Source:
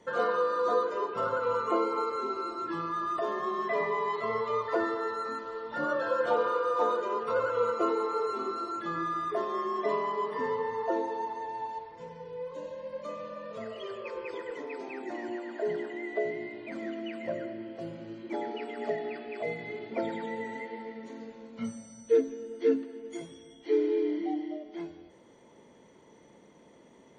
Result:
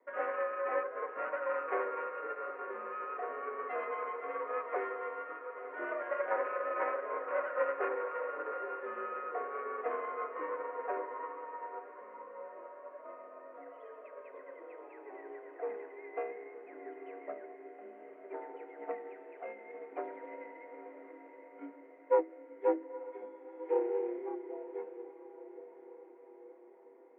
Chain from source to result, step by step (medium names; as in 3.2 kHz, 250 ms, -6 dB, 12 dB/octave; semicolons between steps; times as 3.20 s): self-modulated delay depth 0.28 ms; echo that smears into a reverb 932 ms, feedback 57%, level -8 dB; mistuned SSB +54 Hz 230–2100 Hz; upward expansion 1.5:1, over -38 dBFS; trim -2.5 dB